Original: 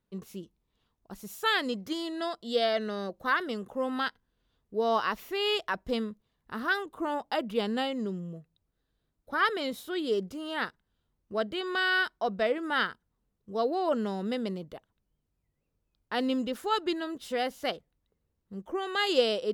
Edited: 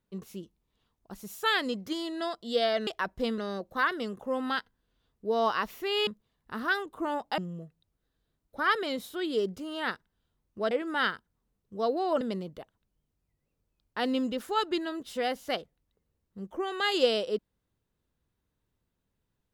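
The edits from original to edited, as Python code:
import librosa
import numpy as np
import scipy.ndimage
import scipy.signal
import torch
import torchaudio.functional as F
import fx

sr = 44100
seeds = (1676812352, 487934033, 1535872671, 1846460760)

y = fx.edit(x, sr, fx.move(start_s=5.56, length_s=0.51, to_s=2.87),
    fx.cut(start_s=7.38, length_s=0.74),
    fx.cut(start_s=11.45, length_s=1.02),
    fx.cut(start_s=13.97, length_s=0.39), tone=tone)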